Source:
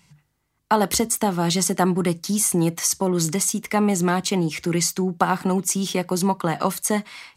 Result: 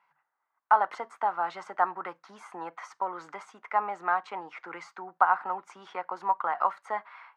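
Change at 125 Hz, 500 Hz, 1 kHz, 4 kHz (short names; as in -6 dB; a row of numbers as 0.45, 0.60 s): under -35 dB, -13.0 dB, -1.0 dB, under -25 dB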